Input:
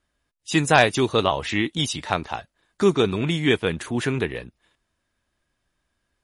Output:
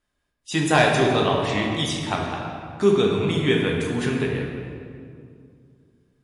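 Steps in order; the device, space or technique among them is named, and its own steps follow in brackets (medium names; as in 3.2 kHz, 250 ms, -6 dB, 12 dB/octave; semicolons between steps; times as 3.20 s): stairwell (reverberation RT60 2.3 s, pre-delay 4 ms, DRR -1 dB); trim -4 dB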